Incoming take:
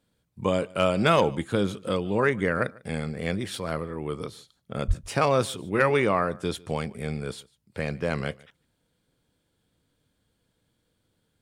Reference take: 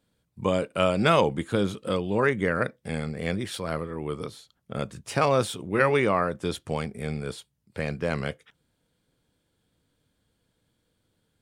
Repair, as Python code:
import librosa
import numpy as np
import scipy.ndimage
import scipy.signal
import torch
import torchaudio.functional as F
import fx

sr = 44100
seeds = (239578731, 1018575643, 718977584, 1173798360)

y = fx.fix_declip(x, sr, threshold_db=-10.0)
y = fx.fix_deplosive(y, sr, at_s=(4.87,))
y = fx.fix_echo_inverse(y, sr, delay_ms=148, level_db=-24.0)